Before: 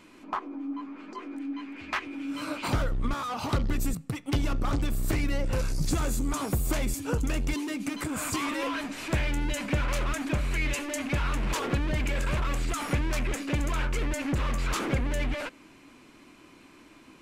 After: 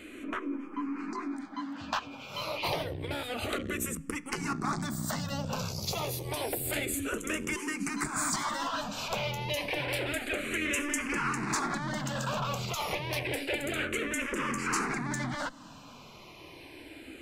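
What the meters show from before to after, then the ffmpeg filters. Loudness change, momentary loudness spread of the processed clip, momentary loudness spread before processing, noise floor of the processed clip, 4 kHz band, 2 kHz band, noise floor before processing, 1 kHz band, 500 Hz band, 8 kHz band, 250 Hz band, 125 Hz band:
-2.5 dB, 9 LU, 7 LU, -50 dBFS, +1.5 dB, +1.0 dB, -54 dBFS, +0.5 dB, -1.0 dB, +1.5 dB, -3.5 dB, -8.0 dB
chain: -filter_complex "[0:a]afftfilt=real='re*lt(hypot(re,im),0.178)':imag='im*lt(hypot(re,im),0.178)':win_size=1024:overlap=0.75,asplit=2[a][b];[b]acompressor=threshold=-42dB:ratio=6,volume=2.5dB[c];[a][c]amix=inputs=2:normalize=0,asplit=2[d][e];[e]afreqshift=-0.29[f];[d][f]amix=inputs=2:normalize=1,volume=1.5dB"

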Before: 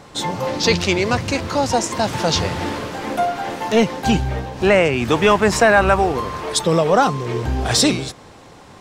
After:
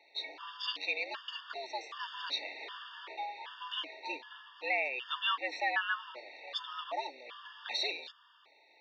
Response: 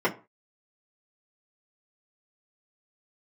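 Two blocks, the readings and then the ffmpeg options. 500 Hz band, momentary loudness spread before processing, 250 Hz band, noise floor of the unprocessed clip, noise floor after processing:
-27.5 dB, 11 LU, -36.5 dB, -43 dBFS, -64 dBFS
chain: -af "aderivative,highpass=f=170:t=q:w=0.5412,highpass=f=170:t=q:w=1.307,lowpass=f=3.6k:t=q:w=0.5176,lowpass=f=3.6k:t=q:w=0.7071,lowpass=f=3.6k:t=q:w=1.932,afreqshift=120,afftfilt=real='re*gt(sin(2*PI*1.3*pts/sr)*(1-2*mod(floor(b*sr/1024/910),2)),0)':imag='im*gt(sin(2*PI*1.3*pts/sr)*(1-2*mod(floor(b*sr/1024/910),2)),0)':win_size=1024:overlap=0.75"

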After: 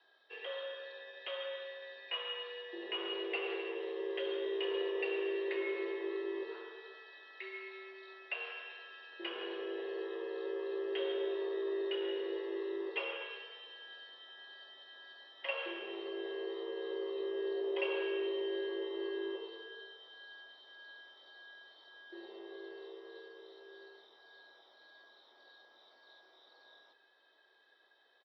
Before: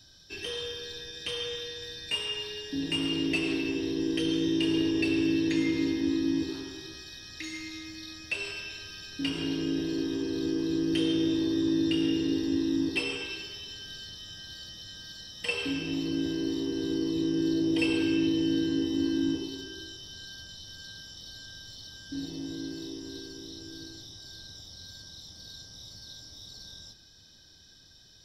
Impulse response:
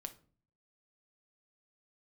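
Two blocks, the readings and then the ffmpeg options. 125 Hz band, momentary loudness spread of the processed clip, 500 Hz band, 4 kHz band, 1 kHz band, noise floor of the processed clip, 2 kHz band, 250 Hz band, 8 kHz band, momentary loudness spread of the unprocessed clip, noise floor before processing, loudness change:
under -40 dB, 17 LU, -1.5 dB, -10.0 dB, +0.5 dB, -68 dBFS, -6.5 dB, -18.5 dB, under -35 dB, 17 LU, -56 dBFS, -9.5 dB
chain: -filter_complex "[0:a]highpass=f=290:t=q:w=0.5412,highpass=f=290:t=q:w=1.307,lowpass=f=3.6k:t=q:w=0.5176,lowpass=f=3.6k:t=q:w=0.7071,lowpass=f=3.6k:t=q:w=1.932,afreqshift=67,acrossover=split=540 2000:gain=0.2 1 0.178[a][b][c];[a][b][c]amix=inputs=3:normalize=0,asplit=2[d][e];[e]adelay=16,volume=-12dB[f];[d][f]amix=inputs=2:normalize=0,volume=1dB"

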